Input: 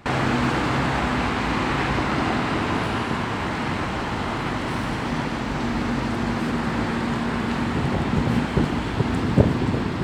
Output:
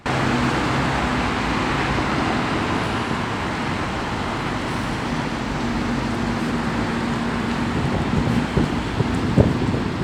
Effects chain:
parametric band 6,800 Hz +2.5 dB 1.7 octaves
level +1.5 dB

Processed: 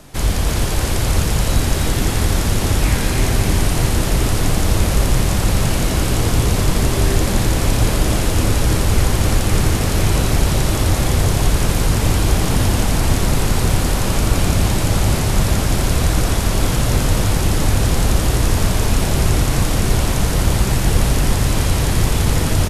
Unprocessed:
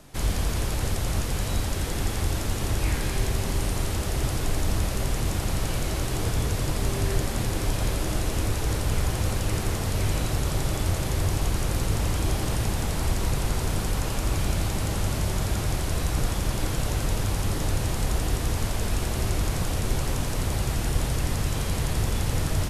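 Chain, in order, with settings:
echo with shifted repeats 316 ms, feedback 58%, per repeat −71 Hz, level −4 dB
level +8 dB

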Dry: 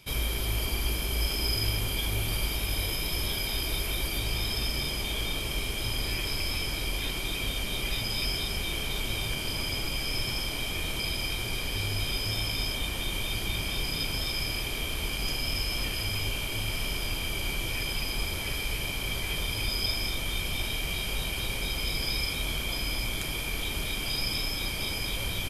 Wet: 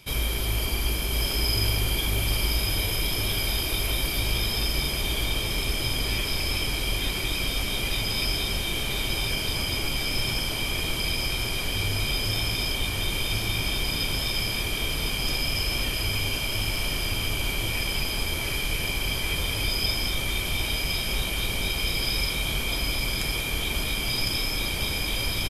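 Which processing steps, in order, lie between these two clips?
single-tap delay 1,057 ms −5.5 dB
level +3 dB

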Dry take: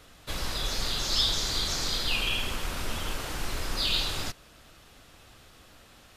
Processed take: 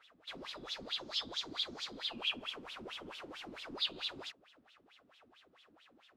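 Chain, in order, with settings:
dynamic equaliser 1,700 Hz, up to −4 dB, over −49 dBFS, Q 1.5
LFO wah 4.5 Hz 240–3,600 Hz, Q 5
level +1.5 dB

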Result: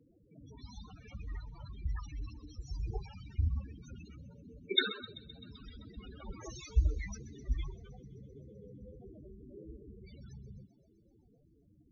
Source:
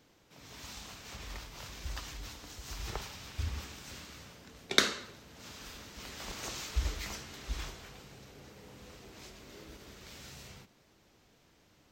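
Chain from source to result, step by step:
spectral peaks only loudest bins 8
delay with a high-pass on its return 129 ms, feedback 74%, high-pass 4,100 Hz, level −14 dB
tape wow and flutter 22 cents
level +5 dB

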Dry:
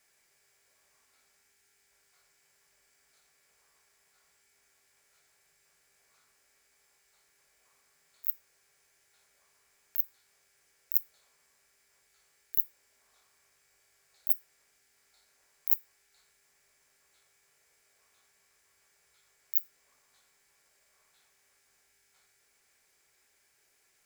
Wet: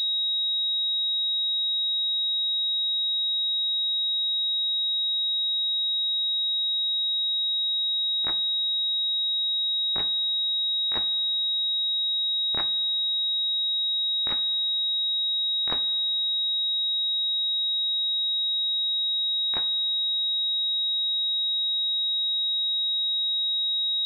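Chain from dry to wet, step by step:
bit-depth reduction 12 bits, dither none
coupled-rooms reverb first 0.27 s, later 2.9 s, from −19 dB, DRR 12.5 dB
switching amplifier with a slow clock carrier 3,800 Hz

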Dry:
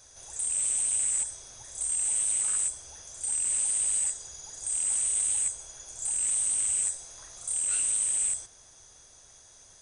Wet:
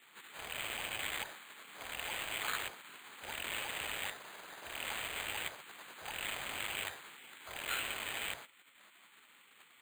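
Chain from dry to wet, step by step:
gate on every frequency bin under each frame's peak −20 dB weak
spectral tilt +3 dB per octave
bad sample-rate conversion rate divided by 8×, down filtered, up hold
level +10 dB

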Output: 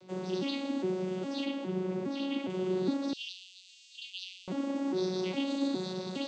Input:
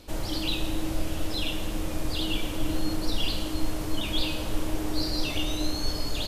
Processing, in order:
vocoder with an arpeggio as carrier bare fifth, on F#3, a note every 410 ms
0:01.45–0:02.50: high-shelf EQ 4,500 Hz −8 dB
0:03.13–0:04.48: Chebyshev high-pass filter 2,700 Hz, order 5

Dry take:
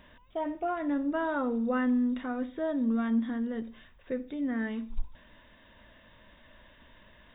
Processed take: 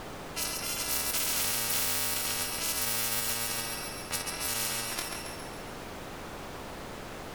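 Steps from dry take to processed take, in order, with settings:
samples in bit-reversed order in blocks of 128 samples
low-pass that shuts in the quiet parts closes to 990 Hz, open at −25.5 dBFS
in parallel at −9 dB: hard clipping −26.5 dBFS, distortion −14 dB
on the sum: background noise brown −45 dBFS
on a send: feedback echo with a high-pass in the loop 137 ms, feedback 55%, level −10 dB
on the sum: every bin compressed towards the loudest bin 10 to 1

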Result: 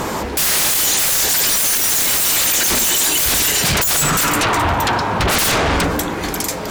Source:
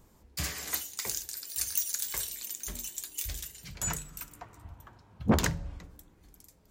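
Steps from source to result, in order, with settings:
mid-hump overdrive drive 32 dB, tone 2,200 Hz, clips at −12.5 dBFS
sine wavefolder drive 19 dB, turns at −12.5 dBFS

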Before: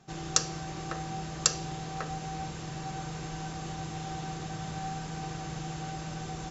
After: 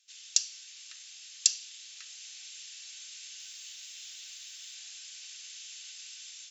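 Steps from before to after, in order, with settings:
automatic gain control gain up to 3.5 dB
0:03.38–0:04.74: background noise white −71 dBFS
inverse Chebyshev high-pass filter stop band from 470 Hz, stop band 80 dB

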